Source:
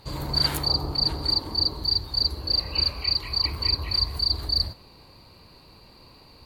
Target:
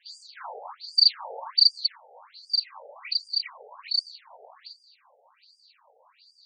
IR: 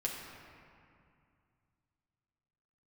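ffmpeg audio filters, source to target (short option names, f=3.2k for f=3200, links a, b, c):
-filter_complex "[0:a]asettb=1/sr,asplit=3[a][b][c];[a]atrim=end=0.834[d];[b]atrim=start=0.83:end=1.96,asetpts=PTS-STARTPTS,afade=t=in:d=0.004:c=qsin,afade=t=out:st=1.126:d=0.004:c=qsin,acontrast=78[e];[c]atrim=start=1.956[f];[d][e]acrossfade=d=0.004:c1=hsin:c2=qsin[g];[g][f]acrossfade=d=0.004:c1=qsin:c2=hsin,asettb=1/sr,asplit=3[h][i][j];[h]atrim=end=3.854[k];[i]atrim=start=3.85:end=4.34,asetpts=PTS-STARTPTS,afade=t=in:d=0.004:c=qsin,afade=t=out:st=0.486:d=0.004:c=qsin,afreqshift=-71[l];[j]atrim=start=4.336[m];[k][l]acrossfade=d=0.004:c1=hsin:c2=qsin[n];[n][m]acrossfade=d=0.004:c1=qsin:c2=hsin,afftfilt=real='re*between(b*sr/1024,590*pow(6700/590,0.5+0.5*sin(2*PI*1.3*pts/sr))/1.41,590*pow(6700/590,0.5+0.5*sin(2*PI*1.3*pts/sr))*1.41)':imag='im*between(b*sr/1024,590*pow(6700/590,0.5+0.5*sin(2*PI*1.3*pts/sr))/1.41,590*pow(6700/590,0.5+0.5*sin(2*PI*1.3*pts/sr))*1.41)':win_size=1024:overlap=0.75"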